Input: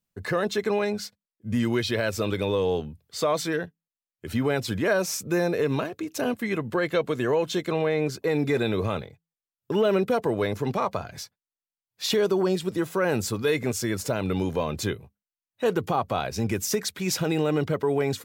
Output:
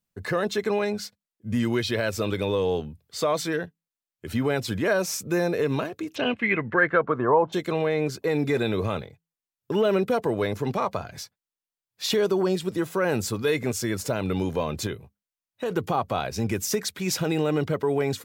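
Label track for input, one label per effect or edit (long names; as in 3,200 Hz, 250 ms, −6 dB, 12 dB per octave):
6.140000	7.520000	low-pass with resonance 3,300 Hz → 830 Hz, resonance Q 4.1
14.860000	15.710000	downward compressor, threshold −24 dBFS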